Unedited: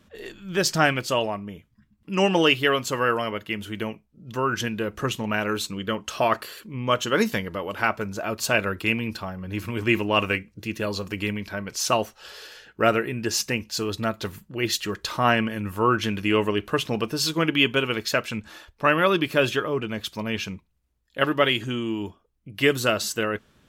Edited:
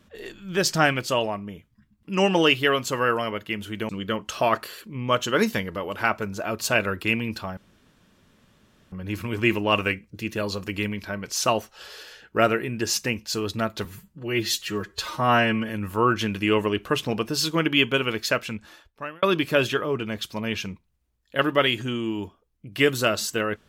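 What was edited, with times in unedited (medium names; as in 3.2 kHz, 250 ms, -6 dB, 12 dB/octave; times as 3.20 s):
3.89–5.68 s: delete
9.36 s: insert room tone 1.35 s
14.29–15.52 s: stretch 1.5×
18.18–19.05 s: fade out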